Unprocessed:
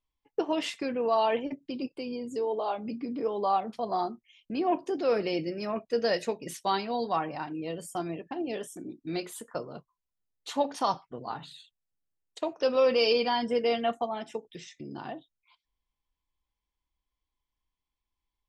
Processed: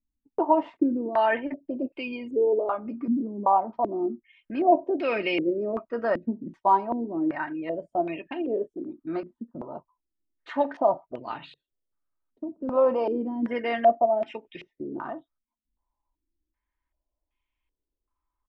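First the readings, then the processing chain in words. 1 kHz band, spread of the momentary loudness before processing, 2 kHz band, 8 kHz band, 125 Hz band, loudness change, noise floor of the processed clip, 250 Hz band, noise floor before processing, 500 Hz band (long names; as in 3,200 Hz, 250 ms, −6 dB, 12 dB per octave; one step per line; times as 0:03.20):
+5.0 dB, 15 LU, +4.0 dB, below −25 dB, −1.0 dB, +4.0 dB, below −85 dBFS, +5.5 dB, below −85 dBFS, +3.0 dB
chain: comb filter 3.2 ms, depth 43%
low-pass on a step sequencer 2.6 Hz 230–2,500 Hz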